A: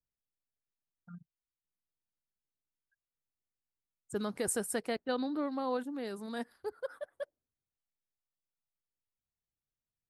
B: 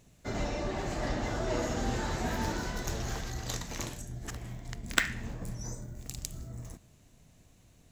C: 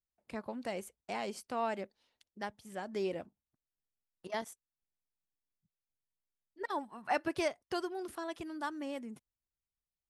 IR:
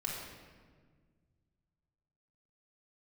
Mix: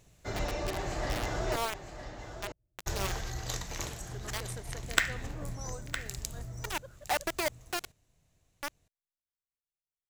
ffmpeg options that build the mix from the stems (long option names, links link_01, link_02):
-filter_complex "[0:a]volume=-11.5dB[link_01];[1:a]volume=0dB,asplit=3[link_02][link_03][link_04];[link_02]atrim=end=1.56,asetpts=PTS-STARTPTS,afade=type=out:start_time=1.556:duration=0.004:curve=hsin[link_05];[link_03]atrim=start=1.56:end=2.86,asetpts=PTS-STARTPTS,volume=0[link_06];[link_04]atrim=start=2.86,asetpts=PTS-STARTPTS,afade=type=in:duration=0.004:curve=hsin[link_07];[link_05][link_06][link_07]concat=n=3:v=0:a=1,asplit=3[link_08][link_09][link_10];[link_09]volume=-23.5dB[link_11];[link_10]volume=-10dB[link_12];[2:a]highpass=frequency=66:poles=1,acrusher=bits=4:mix=0:aa=0.000001,volume=0dB[link_13];[3:a]atrim=start_sample=2205[link_14];[link_11][link_14]afir=irnorm=-1:irlink=0[link_15];[link_12]aecho=0:1:961:1[link_16];[link_01][link_08][link_13][link_15][link_16]amix=inputs=5:normalize=0,equalizer=frequency=230:width=2:gain=-8.5"